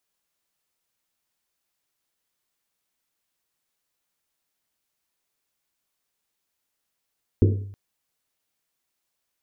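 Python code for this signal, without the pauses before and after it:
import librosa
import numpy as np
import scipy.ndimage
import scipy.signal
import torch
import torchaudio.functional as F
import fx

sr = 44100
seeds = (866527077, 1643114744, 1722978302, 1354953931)

y = fx.risset_drum(sr, seeds[0], length_s=0.32, hz=99.0, decay_s=0.74, noise_hz=340.0, noise_width_hz=240.0, noise_pct=30)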